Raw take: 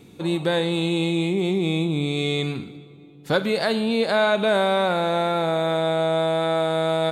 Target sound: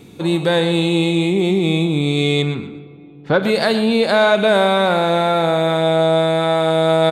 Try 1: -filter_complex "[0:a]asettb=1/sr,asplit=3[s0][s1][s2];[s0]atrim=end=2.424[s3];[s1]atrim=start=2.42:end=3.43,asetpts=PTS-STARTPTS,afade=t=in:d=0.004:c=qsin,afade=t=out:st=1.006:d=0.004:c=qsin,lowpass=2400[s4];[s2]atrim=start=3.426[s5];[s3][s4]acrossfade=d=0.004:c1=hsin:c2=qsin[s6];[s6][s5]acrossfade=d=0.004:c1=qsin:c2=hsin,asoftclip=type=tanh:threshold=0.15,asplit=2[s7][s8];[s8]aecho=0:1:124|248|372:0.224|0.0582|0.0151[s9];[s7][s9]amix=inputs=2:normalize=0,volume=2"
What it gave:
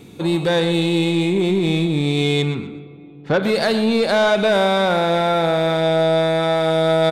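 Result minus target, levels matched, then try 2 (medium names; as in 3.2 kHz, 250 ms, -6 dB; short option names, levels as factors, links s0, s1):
saturation: distortion +18 dB
-filter_complex "[0:a]asettb=1/sr,asplit=3[s0][s1][s2];[s0]atrim=end=2.424[s3];[s1]atrim=start=2.42:end=3.43,asetpts=PTS-STARTPTS,afade=t=in:d=0.004:c=qsin,afade=t=out:st=1.006:d=0.004:c=qsin,lowpass=2400[s4];[s2]atrim=start=3.426[s5];[s3][s4]acrossfade=d=0.004:c1=hsin:c2=qsin[s6];[s6][s5]acrossfade=d=0.004:c1=qsin:c2=hsin,asoftclip=type=tanh:threshold=0.531,asplit=2[s7][s8];[s8]aecho=0:1:124|248|372:0.224|0.0582|0.0151[s9];[s7][s9]amix=inputs=2:normalize=0,volume=2"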